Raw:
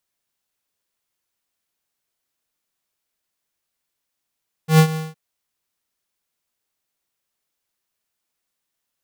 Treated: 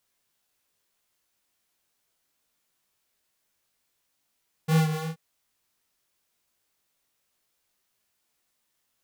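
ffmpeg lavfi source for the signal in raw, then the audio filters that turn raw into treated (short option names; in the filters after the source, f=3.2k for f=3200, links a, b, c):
-f lavfi -i "aevalsrc='0.355*(2*lt(mod(158*t,1),0.5)-1)':d=0.464:s=44100,afade=t=in:d=0.109,afade=t=out:st=0.109:d=0.08:silence=0.168,afade=t=out:st=0.28:d=0.184"
-filter_complex "[0:a]asplit=2[a][b];[b]alimiter=limit=-18dB:level=0:latency=1,volume=2dB[c];[a][c]amix=inputs=2:normalize=0,acompressor=threshold=-24dB:ratio=3,flanger=delay=17.5:depth=4.3:speed=2.9"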